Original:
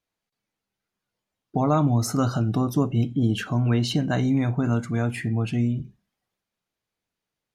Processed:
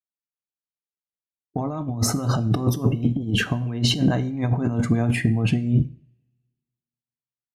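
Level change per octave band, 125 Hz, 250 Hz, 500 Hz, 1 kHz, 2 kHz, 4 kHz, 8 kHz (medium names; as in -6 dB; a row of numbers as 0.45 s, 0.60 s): +1.5 dB, +0.5 dB, -1.5 dB, -3.0 dB, +4.5 dB, +6.5 dB, +5.5 dB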